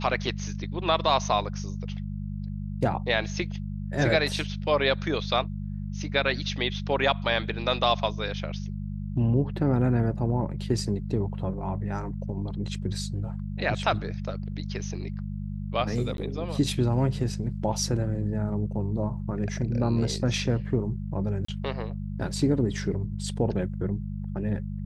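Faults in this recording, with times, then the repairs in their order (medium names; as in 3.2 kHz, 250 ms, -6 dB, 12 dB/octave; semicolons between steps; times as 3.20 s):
hum 50 Hz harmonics 4 -33 dBFS
16.17–16.18 s: dropout 12 ms
21.45–21.48 s: dropout 34 ms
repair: de-hum 50 Hz, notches 4; interpolate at 16.17 s, 12 ms; interpolate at 21.45 s, 34 ms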